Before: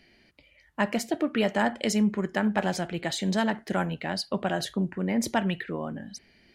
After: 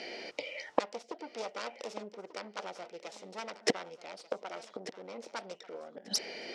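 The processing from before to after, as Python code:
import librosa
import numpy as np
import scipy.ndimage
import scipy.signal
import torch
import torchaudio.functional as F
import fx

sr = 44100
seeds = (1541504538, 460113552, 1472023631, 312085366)

y = fx.self_delay(x, sr, depth_ms=0.75)
y = fx.peak_eq(y, sr, hz=840.0, db=8.0, octaves=2.4)
y = fx.gate_flip(y, sr, shuts_db=-24.0, range_db=-33)
y = fx.cabinet(y, sr, low_hz=380.0, low_slope=12, high_hz=7700.0, hz=(480.0, 1100.0, 1700.0, 5400.0), db=(9, -6, -8, 7))
y = fx.echo_feedback(y, sr, ms=1190, feedback_pct=22, wet_db=-15)
y = y * 10.0 ** (15.0 / 20.0)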